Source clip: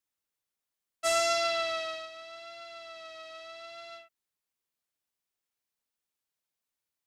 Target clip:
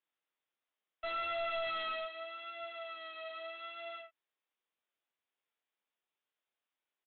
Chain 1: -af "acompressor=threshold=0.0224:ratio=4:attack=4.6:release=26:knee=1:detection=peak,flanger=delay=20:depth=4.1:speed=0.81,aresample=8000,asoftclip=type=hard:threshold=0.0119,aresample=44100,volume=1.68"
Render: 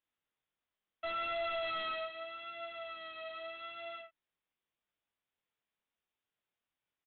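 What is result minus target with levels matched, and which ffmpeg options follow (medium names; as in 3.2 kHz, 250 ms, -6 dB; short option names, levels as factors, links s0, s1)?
250 Hz band +3.0 dB
-af "acompressor=threshold=0.0224:ratio=4:attack=4.6:release=26:knee=1:detection=peak,highpass=310,flanger=delay=20:depth=4.1:speed=0.81,aresample=8000,asoftclip=type=hard:threshold=0.0119,aresample=44100,volume=1.68"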